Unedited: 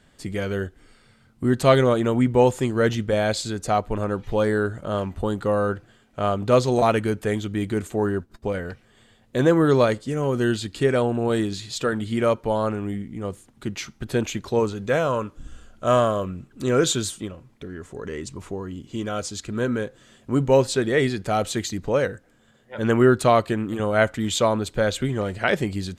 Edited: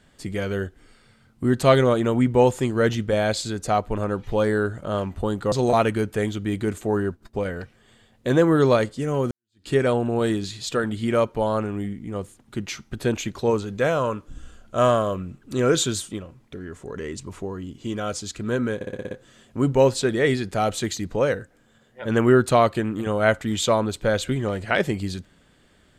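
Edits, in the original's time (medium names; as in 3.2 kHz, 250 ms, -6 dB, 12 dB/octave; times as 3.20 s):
5.52–6.61 s: delete
10.40–10.77 s: fade in exponential
19.84 s: stutter 0.06 s, 7 plays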